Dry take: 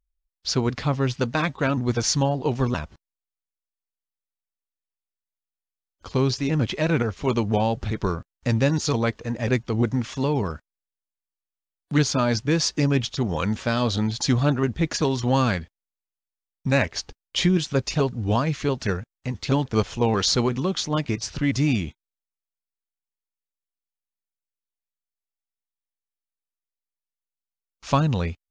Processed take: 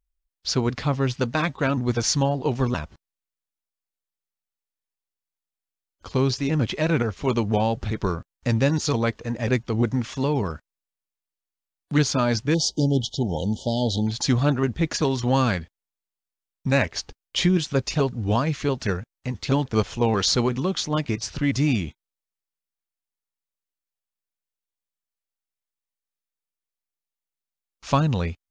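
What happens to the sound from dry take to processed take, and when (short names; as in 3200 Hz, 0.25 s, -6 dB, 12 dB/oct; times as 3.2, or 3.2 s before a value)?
12.54–14.07 brick-wall FIR band-stop 930–2900 Hz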